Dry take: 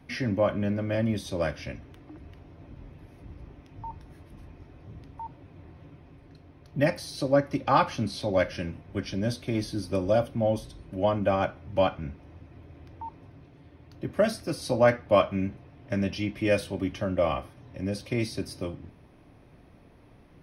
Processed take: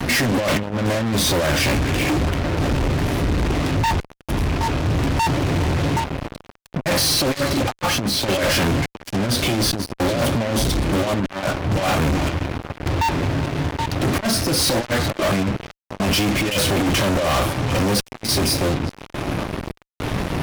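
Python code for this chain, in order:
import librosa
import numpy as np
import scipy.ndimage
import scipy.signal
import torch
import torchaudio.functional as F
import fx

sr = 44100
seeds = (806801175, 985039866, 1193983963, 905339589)

y = fx.over_compress(x, sr, threshold_db=-32.0, ratio=-0.5)
y = fx.echo_stepped(y, sr, ms=386, hz=2500.0, octaves=-1.4, feedback_pct=70, wet_db=-9.5)
y = fx.tremolo_random(y, sr, seeds[0], hz=3.5, depth_pct=95)
y = fx.fuzz(y, sr, gain_db=55.0, gate_db=-53.0)
y = F.gain(torch.from_numpy(y), -4.0).numpy()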